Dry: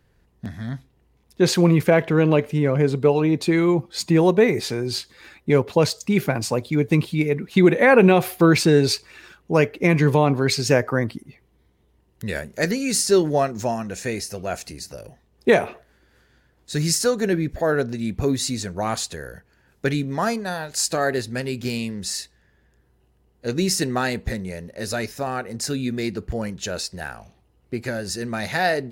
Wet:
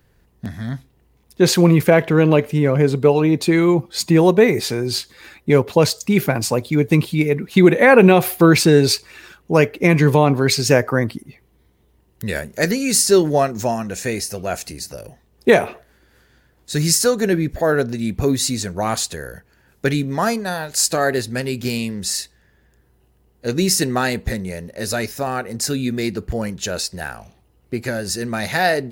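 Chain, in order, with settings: treble shelf 12 kHz +10 dB; trim +3.5 dB

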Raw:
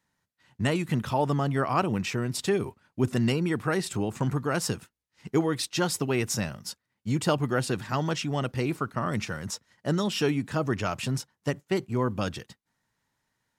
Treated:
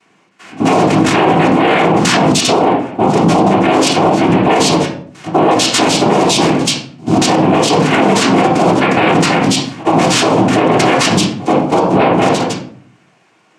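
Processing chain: level held to a coarse grid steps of 18 dB; peaking EQ 530 Hz +10 dB 1.2 oct; in parallel at -3 dB: compressor with a negative ratio -44 dBFS, ratio -1; on the sum: dynamic bell 3.9 kHz, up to +6 dB, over -52 dBFS, Q 1.5; noise-vocoded speech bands 4; high-pass 170 Hz 12 dB/octave; pre-echo 84 ms -22.5 dB; reverberation RT60 0.55 s, pre-delay 3 ms, DRR -3 dB; loudness maximiser +21.5 dB; loudspeaker Doppler distortion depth 0.16 ms; trim -1 dB

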